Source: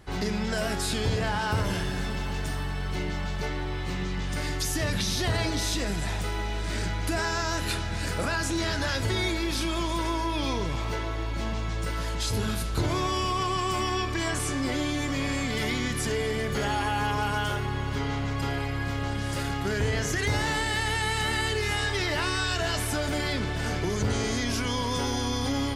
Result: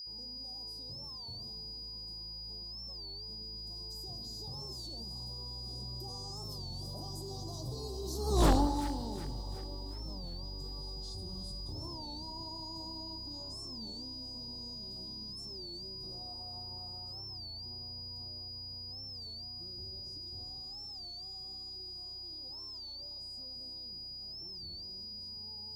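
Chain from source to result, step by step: Doppler pass-by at 8.47, 52 m/s, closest 2.8 m; whine 4900 Hz -58 dBFS; Chebyshev band-stop 960–4100 Hz, order 3; in parallel at +2 dB: negative-ratio compressor -60 dBFS, ratio -1; on the sum: low shelf 240 Hz +5.5 dB; wavefolder -24 dBFS; split-band echo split 1400 Hz, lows 89 ms, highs 0.367 s, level -11 dB; on a send at -17 dB: reverb RT60 3.1 s, pre-delay 3 ms; on the sum: companded quantiser 8-bit; record warp 33 1/3 rpm, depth 160 cents; gain +6 dB

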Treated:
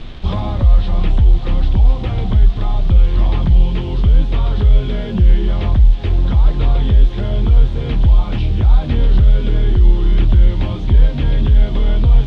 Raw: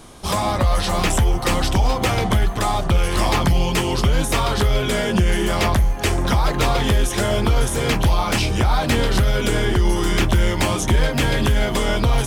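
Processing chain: tilt -4.5 dB/oct; AGC; bit-crush 7-bit; synth low-pass 3500 Hz, resonance Q 3.4; gain -1 dB

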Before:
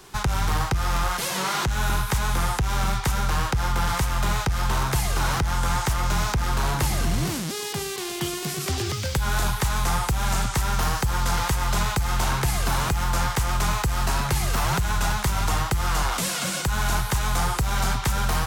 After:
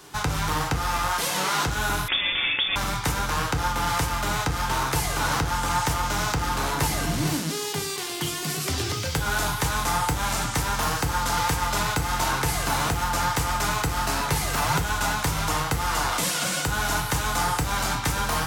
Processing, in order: HPF 110 Hz 6 dB/oct; FDN reverb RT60 0.4 s, low-frequency decay 1.1×, high-frequency decay 0.85×, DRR 4 dB; 2.08–2.76 inverted band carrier 3500 Hz

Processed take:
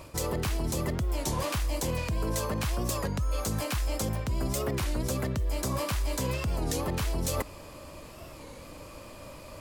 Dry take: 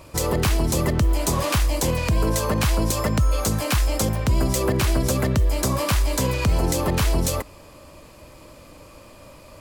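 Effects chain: reverse; compressor 6:1, threshold -27 dBFS, peak gain reduction 11.5 dB; reverse; record warp 33 1/3 rpm, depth 160 cents

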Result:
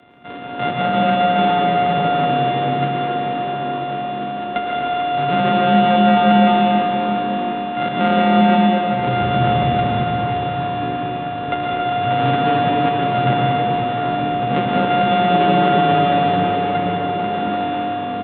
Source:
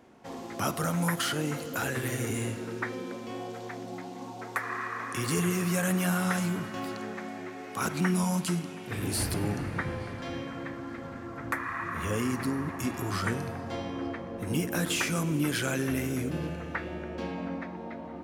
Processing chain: sample sorter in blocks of 64 samples; downsampling 8000 Hz; plate-style reverb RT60 4.5 s, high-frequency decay 0.6×, pre-delay 95 ms, DRR -3 dB; frequency shift +25 Hz; gain +7.5 dB

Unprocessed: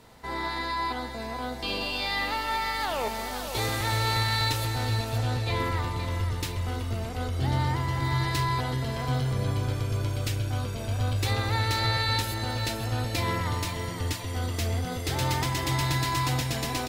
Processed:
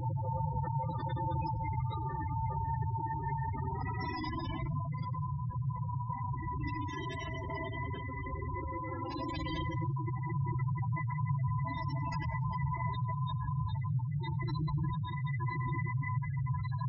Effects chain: notch 4200 Hz, Q 16; de-hum 59.05 Hz, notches 14; Paulstretch 22×, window 0.05 s, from 15.25; spectral gate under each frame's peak -10 dB strong; on a send: thin delay 95 ms, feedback 56%, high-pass 5300 Hz, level -23.5 dB; on the sum: gain -6 dB

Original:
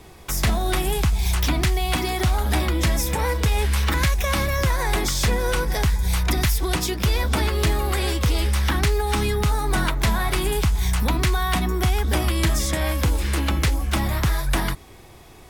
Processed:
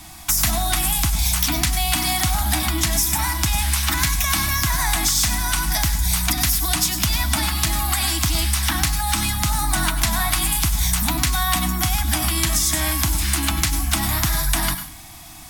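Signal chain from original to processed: tone controls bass -3 dB, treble +9 dB; compressor, threshold -21 dBFS, peak gain reduction 6.5 dB; elliptic band-stop 320–660 Hz, stop band 40 dB; on a send: high shelf 10000 Hz +12 dB + reverb RT60 0.35 s, pre-delay 94 ms, DRR 11 dB; on the sum: gain +5 dB

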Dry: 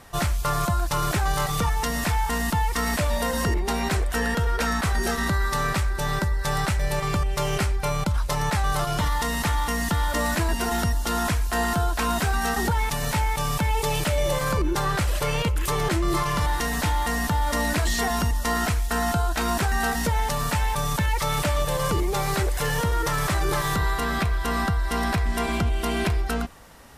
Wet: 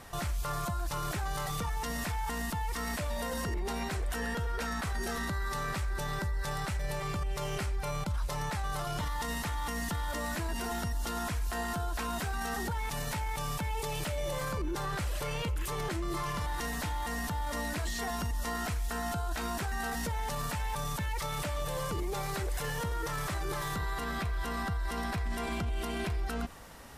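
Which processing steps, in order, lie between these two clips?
limiter -25 dBFS, peak gain reduction 11.5 dB; gain -1.5 dB

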